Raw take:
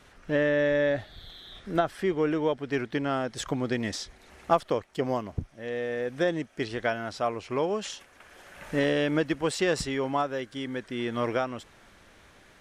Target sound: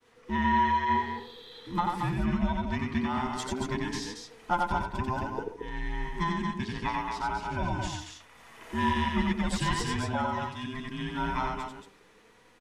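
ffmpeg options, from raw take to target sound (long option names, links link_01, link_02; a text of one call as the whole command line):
ffmpeg -i in.wav -filter_complex "[0:a]afftfilt=real='real(if(between(b,1,1008),(2*floor((b-1)/24)+1)*24-b,b),0)':imag='imag(if(between(b,1,1008),(2*floor((b-1)/24)+1)*24-b,b),0)*if(between(b,1,1008),-1,1)':win_size=2048:overlap=0.75,asplit=2[link_01][link_02];[link_02]adelay=81,lowpass=frequency=1600:poles=1,volume=-11dB,asplit=2[link_03][link_04];[link_04]adelay=81,lowpass=frequency=1600:poles=1,volume=0.35,asplit=2[link_05][link_06];[link_06]adelay=81,lowpass=frequency=1600:poles=1,volume=0.35,asplit=2[link_07][link_08];[link_08]adelay=81,lowpass=frequency=1600:poles=1,volume=0.35[link_09];[link_03][link_05][link_07][link_09]amix=inputs=4:normalize=0[link_10];[link_01][link_10]amix=inputs=2:normalize=0,agate=range=-33dB:threshold=-51dB:ratio=3:detection=peak,flanger=delay=4:depth=1.3:regen=69:speed=0.72:shape=triangular,asplit=2[link_11][link_12];[link_12]aecho=0:1:90.38|227.4:0.708|0.562[link_13];[link_11][link_13]amix=inputs=2:normalize=0" out.wav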